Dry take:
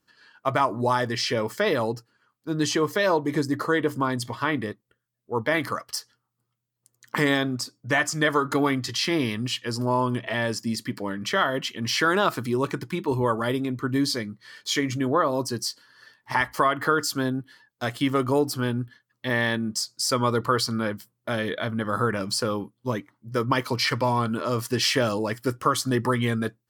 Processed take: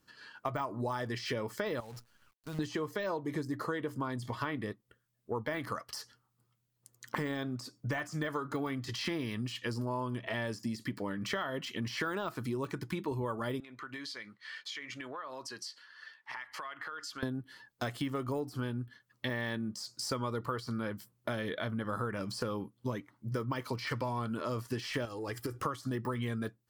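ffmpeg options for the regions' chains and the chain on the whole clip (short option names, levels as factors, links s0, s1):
-filter_complex "[0:a]asettb=1/sr,asplit=3[s0][s1][s2];[s0]atrim=end=1.804[s3];[s1]atrim=start=1.8:end=2.59,asetpts=PTS-STARTPTS,afade=t=in:d=0.004:c=qsin,afade=t=out:st=0.786:d=0.004:c=qsin,equalizer=f=330:t=o:w=0.9:g=-12.5,acompressor=threshold=0.00631:ratio=2.5:attack=3.2:release=140:knee=1:detection=peak,acrusher=bits=9:dc=4:mix=0:aa=0.000001[s4];[s2]atrim=start=2.586[s5];[s3][s4]acrossfade=d=0.004:c1=hsin:c2=qsin[s6];[s6][s5]acrossfade=d=0.004:c1=qsin:c2=hsin,asettb=1/sr,asplit=3[s7][s8][s9];[s7]atrim=end=13.604[s10];[s8]atrim=start=13.6:end=17.23,asetpts=PTS-STARTPTS,afade=t=in:d=0.004:c=qsin,afade=t=out:st=3.626:d=0.004:c=qsin,bandpass=f=2200:t=q:w=0.97,acompressor=threshold=0.00891:ratio=8:attack=3.2:release=140:knee=1:detection=peak[s11];[s9]atrim=start=17.226[s12];[s10][s11]acrossfade=d=0.004:c1=hsin:c2=qsin[s13];[s13][s12]acrossfade=d=0.004:c1=qsin:c2=hsin,asettb=1/sr,asplit=3[s14][s15][s16];[s14]atrim=end=25.054[s17];[s15]atrim=start=25.05:end=25.62,asetpts=PTS-STARTPTS,afade=t=in:d=0.004:c=qsin,afade=t=out:st=0.566:d=0.004:c=qsin,aecho=1:1:2.5:0.57,atrim=end_sample=25137,acompressor=threshold=0.0316:ratio=10:attack=3.2:release=140:knee=1:detection=peak[s18];[s16]atrim=start=25.616[s19];[s17][s18]acrossfade=d=0.004:c1=hsin:c2=qsin[s20];[s20][s19]acrossfade=d=0.004:c1=qsin:c2=hsin,deesser=0.8,lowshelf=f=87:g=5.5,acompressor=threshold=0.0158:ratio=5,volume=1.26"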